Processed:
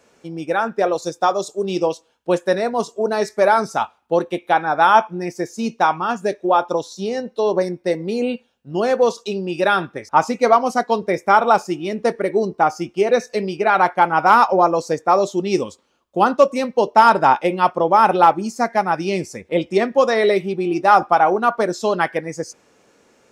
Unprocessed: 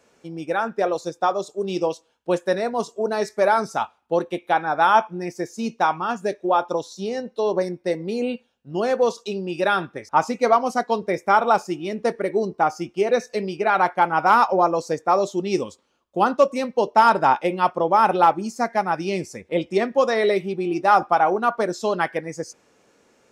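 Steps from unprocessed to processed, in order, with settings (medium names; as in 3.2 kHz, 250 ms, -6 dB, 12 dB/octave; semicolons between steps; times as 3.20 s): 1.02–1.61 s: tone controls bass 0 dB, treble +6 dB; trim +3.5 dB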